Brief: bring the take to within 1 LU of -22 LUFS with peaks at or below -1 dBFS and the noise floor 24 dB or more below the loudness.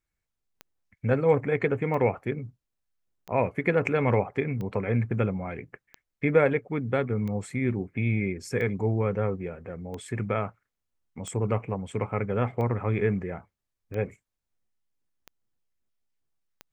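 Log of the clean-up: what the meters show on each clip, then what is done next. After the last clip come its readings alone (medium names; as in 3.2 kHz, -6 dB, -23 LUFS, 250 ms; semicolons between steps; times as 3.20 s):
clicks found 13; loudness -28.0 LUFS; peak level -8.0 dBFS; loudness target -22.0 LUFS
-> de-click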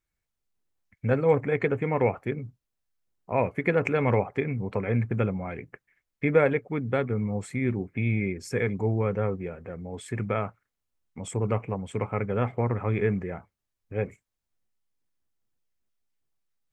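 clicks found 0; loudness -28.0 LUFS; peak level -8.0 dBFS; loudness target -22.0 LUFS
-> trim +6 dB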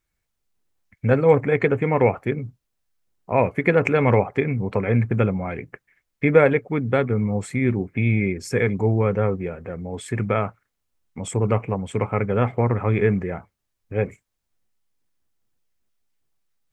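loudness -22.0 LUFS; peak level -2.0 dBFS; noise floor -78 dBFS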